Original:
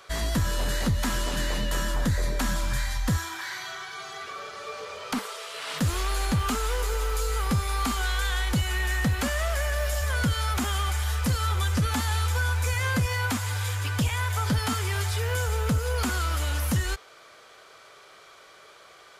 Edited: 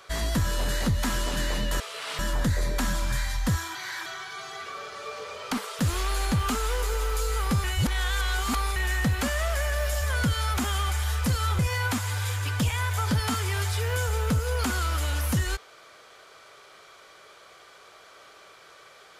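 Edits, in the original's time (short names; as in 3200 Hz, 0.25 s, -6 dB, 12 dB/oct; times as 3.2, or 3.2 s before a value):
3.36–3.67 reverse
5.4–5.79 move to 1.8
7.64–8.76 reverse
11.59–12.98 cut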